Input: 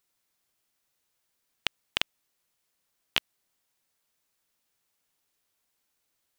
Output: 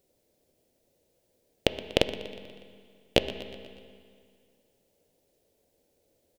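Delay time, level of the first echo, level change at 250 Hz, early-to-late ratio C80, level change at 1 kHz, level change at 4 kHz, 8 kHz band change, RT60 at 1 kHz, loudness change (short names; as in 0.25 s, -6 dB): 0.121 s, -16.0 dB, +17.5 dB, 10.5 dB, +4.5 dB, +1.0 dB, +1.5 dB, 2.1 s, +2.5 dB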